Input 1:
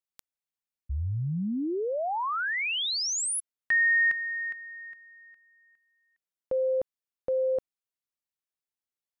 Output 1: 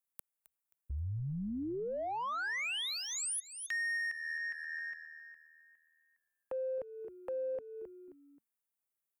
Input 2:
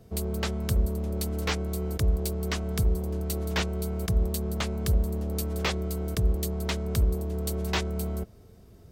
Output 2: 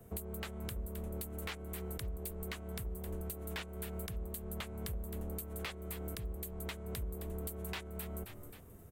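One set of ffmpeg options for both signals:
-filter_complex "[0:a]acrossover=split=200|570|7400[s0][s1][s2][s3];[s2]adynamicsmooth=sensitivity=3.5:basefreq=1900[s4];[s0][s1][s4][s3]amix=inputs=4:normalize=0,tiltshelf=f=930:g=-5.5,asplit=4[s5][s6][s7][s8];[s6]adelay=265,afreqshift=-79,volume=0.158[s9];[s7]adelay=530,afreqshift=-158,volume=0.0569[s10];[s8]adelay=795,afreqshift=-237,volume=0.0207[s11];[s5][s9][s10][s11]amix=inputs=4:normalize=0,acompressor=threshold=0.0178:ratio=10:attack=0.72:release=609:knee=1:detection=peak,volume=1.12"

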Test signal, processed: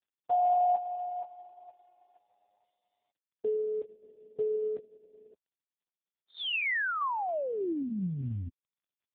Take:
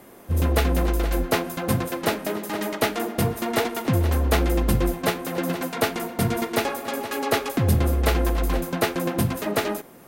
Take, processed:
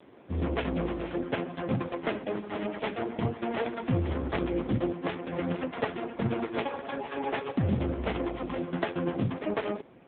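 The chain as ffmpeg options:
-af "volume=0.708" -ar 8000 -c:a libopencore_amrnb -b:a 4750

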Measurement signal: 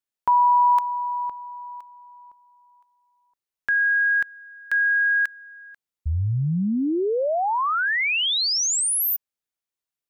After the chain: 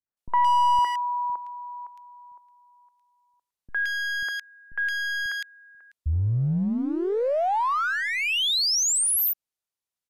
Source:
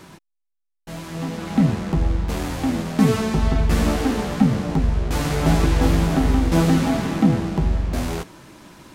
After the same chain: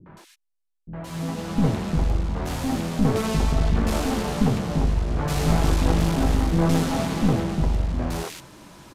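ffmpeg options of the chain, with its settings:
-filter_complex "[0:a]aeval=exprs='clip(val(0),-1,0.0891)':c=same,acrossover=split=300|1900[s0][s1][s2];[s1]adelay=60[s3];[s2]adelay=170[s4];[s0][s3][s4]amix=inputs=3:normalize=0,aresample=32000,aresample=44100"

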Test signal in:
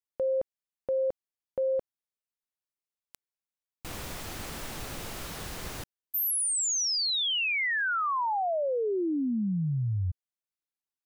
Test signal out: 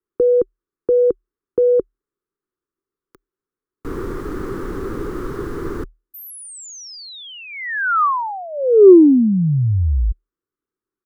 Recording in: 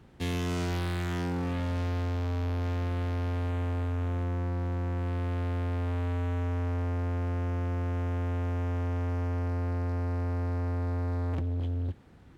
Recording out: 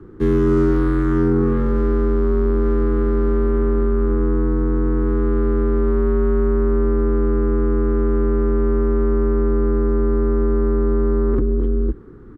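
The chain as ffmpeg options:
-af "afreqshift=-39,firequalizer=gain_entry='entry(200,0);entry(380,13);entry(650,-16);entry(1200,2);entry(2500,-20)':delay=0.05:min_phase=1,acontrast=33,volume=2.24"

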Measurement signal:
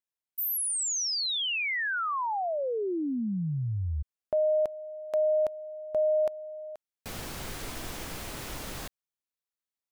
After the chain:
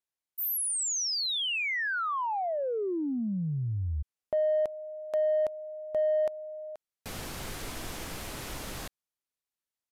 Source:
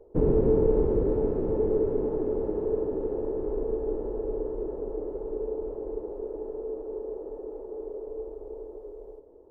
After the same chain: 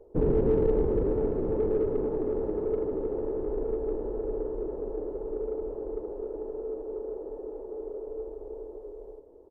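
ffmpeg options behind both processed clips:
-filter_complex "[0:a]asplit=2[s0][s1];[s1]asoftclip=type=tanh:threshold=0.0422,volume=0.398[s2];[s0][s2]amix=inputs=2:normalize=0,aresample=32000,aresample=44100,volume=0.708"

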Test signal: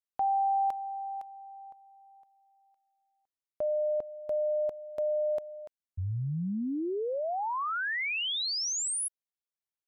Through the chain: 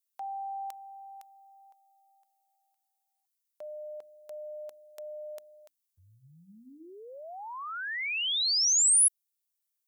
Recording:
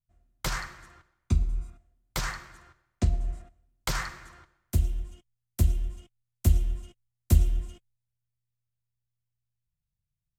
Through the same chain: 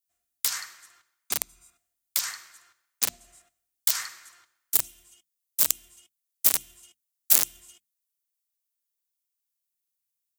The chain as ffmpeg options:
-af "aeval=exprs='(mod(7.94*val(0)+1,2)-1)/7.94':c=same,aderivative,bandreject=f=60:t=h:w=6,bandreject=f=120:t=h:w=6,bandreject=f=180:t=h:w=6,bandreject=f=240:t=h:w=6,bandreject=f=300:t=h:w=6,volume=2.82"

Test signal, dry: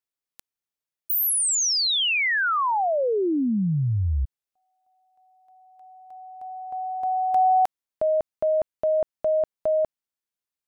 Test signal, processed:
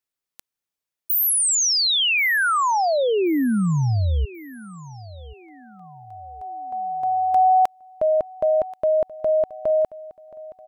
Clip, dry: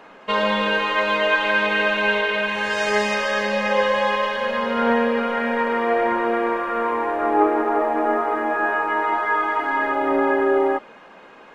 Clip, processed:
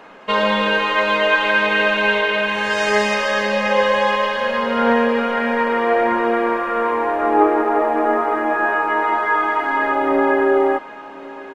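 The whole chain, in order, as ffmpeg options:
-af "aecho=1:1:1082|2164|3246:0.112|0.0426|0.0162,volume=1.41"

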